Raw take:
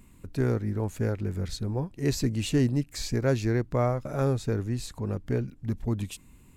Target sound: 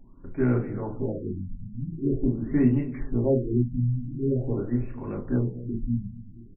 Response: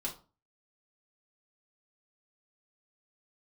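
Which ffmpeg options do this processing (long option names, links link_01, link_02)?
-filter_complex "[0:a]asplit=2[link_01][link_02];[link_02]adelay=231,lowpass=frequency=960:poles=1,volume=-15dB,asplit=2[link_03][link_04];[link_04]adelay=231,lowpass=frequency=960:poles=1,volume=0.48,asplit=2[link_05][link_06];[link_06]adelay=231,lowpass=frequency=960:poles=1,volume=0.48,asplit=2[link_07][link_08];[link_08]adelay=231,lowpass=frequency=960:poles=1,volume=0.48[link_09];[link_01][link_03][link_05][link_07][link_09]amix=inputs=5:normalize=0,asettb=1/sr,asplit=3[link_10][link_11][link_12];[link_10]atrim=end=1.304[link_13];[link_11]atrim=start=1.3:end=1.8,asetpts=PTS-STARTPTS,afade=type=in:duration=0.004:curve=qsin,afade=type=out:start_time=0.496:duration=0.004:curve=qsin,acompressor=threshold=-31dB:ratio=6[link_14];[link_12]atrim=start=1.796[link_15];[link_13][link_14]acrossfade=duration=0.004:curve1=hsin:curve2=qsin[link_16];[link_16][link_15]acrossfade=duration=0.004:curve1=qsin:curve2=hsin,bandreject=frequency=53.05:width_type=h:width=4,bandreject=frequency=106.1:width_type=h:width=4,bandreject=frequency=159.15:width_type=h:width=4,bandreject=frequency=212.2:width_type=h:width=4,bandreject=frequency=265.25:width_type=h:width=4,bandreject=frequency=318.3:width_type=h:width=4,bandreject=frequency=371.35:width_type=h:width=4,bandreject=frequency=424.4:width_type=h:width=4,bandreject=frequency=477.45:width_type=h:width=4,bandreject=frequency=530.5:width_type=h:width=4,bandreject=frequency=583.55:width_type=h:width=4,bandreject=frequency=636.6:width_type=h:width=4[link_17];[1:a]atrim=start_sample=2205[link_18];[link_17][link_18]afir=irnorm=-1:irlink=0,afftfilt=real='re*lt(b*sr/1024,250*pow(2900/250,0.5+0.5*sin(2*PI*0.45*pts/sr)))':imag='im*lt(b*sr/1024,250*pow(2900/250,0.5+0.5*sin(2*PI*0.45*pts/sr)))':win_size=1024:overlap=0.75"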